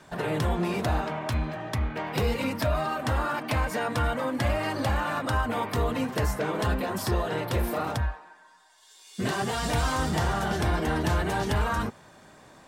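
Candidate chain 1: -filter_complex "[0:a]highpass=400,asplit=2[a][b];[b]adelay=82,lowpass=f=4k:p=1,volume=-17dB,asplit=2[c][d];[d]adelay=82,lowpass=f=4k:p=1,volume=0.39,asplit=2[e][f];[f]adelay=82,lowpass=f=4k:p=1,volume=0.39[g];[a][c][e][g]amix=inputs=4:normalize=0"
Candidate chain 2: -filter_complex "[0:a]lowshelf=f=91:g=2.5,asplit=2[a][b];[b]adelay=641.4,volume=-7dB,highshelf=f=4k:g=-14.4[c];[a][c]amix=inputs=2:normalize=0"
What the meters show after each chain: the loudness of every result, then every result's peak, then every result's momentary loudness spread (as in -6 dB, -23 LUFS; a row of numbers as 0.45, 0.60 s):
-31.0, -27.5 LUFS; -15.5, -13.5 dBFS; 6, 7 LU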